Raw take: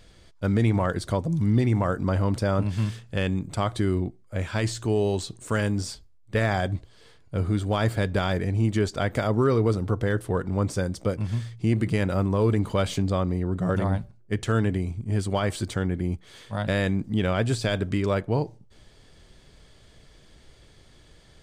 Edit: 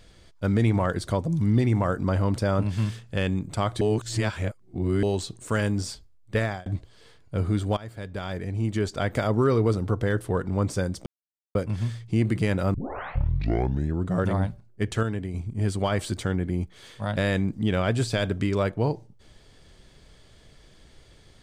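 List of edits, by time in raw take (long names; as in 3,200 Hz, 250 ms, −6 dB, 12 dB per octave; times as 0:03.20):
0:03.81–0:05.03: reverse
0:06.36–0:06.66: fade out
0:07.77–0:09.17: fade in, from −19.5 dB
0:11.06: splice in silence 0.49 s
0:12.25: tape start 1.32 s
0:14.54–0:14.85: clip gain −6 dB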